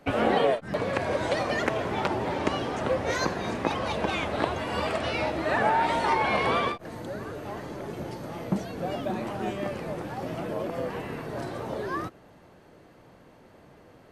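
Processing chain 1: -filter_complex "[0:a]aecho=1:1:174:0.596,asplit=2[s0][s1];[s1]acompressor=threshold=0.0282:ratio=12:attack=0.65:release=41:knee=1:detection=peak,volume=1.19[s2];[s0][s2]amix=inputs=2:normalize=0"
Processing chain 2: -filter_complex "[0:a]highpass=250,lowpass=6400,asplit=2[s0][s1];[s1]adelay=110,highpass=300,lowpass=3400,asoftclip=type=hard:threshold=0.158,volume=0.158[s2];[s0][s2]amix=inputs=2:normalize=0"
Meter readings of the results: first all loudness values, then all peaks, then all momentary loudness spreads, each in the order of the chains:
-24.5 LUFS, -29.5 LUFS; -6.5 dBFS, -7.0 dBFS; 9 LU, 14 LU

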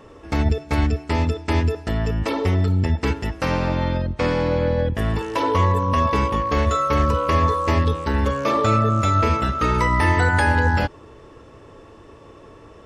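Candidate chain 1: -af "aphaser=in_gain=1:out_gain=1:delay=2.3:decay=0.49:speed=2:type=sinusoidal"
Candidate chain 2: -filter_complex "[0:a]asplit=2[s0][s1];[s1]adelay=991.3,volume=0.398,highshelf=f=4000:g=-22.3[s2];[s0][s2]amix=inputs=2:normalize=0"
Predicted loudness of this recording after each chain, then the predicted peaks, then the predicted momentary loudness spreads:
-18.0 LUFS, -20.5 LUFS; -1.0 dBFS, -6.0 dBFS; 5 LU, 7 LU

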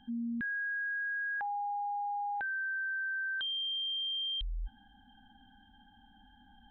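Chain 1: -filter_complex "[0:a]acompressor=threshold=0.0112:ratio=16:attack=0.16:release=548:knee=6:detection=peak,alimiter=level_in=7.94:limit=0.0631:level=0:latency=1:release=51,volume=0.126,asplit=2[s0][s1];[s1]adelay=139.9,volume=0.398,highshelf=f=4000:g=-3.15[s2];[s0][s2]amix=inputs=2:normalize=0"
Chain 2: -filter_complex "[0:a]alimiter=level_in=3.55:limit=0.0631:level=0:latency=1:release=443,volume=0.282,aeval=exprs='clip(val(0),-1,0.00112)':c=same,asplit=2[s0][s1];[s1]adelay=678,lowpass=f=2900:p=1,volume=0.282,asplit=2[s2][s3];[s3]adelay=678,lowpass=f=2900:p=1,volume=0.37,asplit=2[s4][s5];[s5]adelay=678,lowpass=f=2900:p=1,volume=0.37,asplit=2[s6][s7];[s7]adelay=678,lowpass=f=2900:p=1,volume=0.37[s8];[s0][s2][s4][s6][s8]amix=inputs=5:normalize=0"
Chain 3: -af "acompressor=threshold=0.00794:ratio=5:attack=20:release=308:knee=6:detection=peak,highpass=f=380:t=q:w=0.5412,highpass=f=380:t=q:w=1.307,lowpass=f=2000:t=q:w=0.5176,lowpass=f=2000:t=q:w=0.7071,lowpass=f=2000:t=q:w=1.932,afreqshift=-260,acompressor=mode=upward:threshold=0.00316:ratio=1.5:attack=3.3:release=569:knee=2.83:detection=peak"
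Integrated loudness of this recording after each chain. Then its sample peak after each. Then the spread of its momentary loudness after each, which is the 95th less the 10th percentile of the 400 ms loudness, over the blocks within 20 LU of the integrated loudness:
-42.0 LUFS, -41.0 LUFS, -42.5 LUFS; -39.0 dBFS, -32.0 dBFS, -38.0 dBFS; 21 LU, 19 LU, 21 LU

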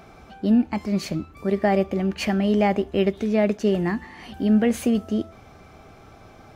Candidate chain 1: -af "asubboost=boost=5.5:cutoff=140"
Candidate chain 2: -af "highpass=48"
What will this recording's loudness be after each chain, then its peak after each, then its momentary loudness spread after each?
-22.5 LUFS, -23.0 LUFS; -7.5 dBFS, -8.5 dBFS; 20 LU, 8 LU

